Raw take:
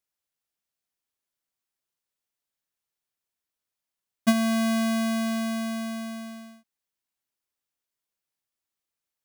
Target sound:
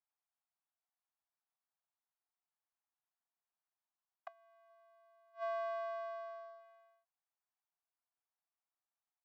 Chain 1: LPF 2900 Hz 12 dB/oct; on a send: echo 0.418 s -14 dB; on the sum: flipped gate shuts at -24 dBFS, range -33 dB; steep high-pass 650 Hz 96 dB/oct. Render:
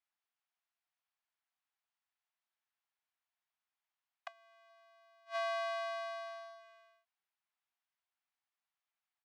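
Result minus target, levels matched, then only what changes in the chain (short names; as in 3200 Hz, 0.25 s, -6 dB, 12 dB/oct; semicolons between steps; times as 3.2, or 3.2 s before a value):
4000 Hz band +13.0 dB
change: LPF 1100 Hz 12 dB/oct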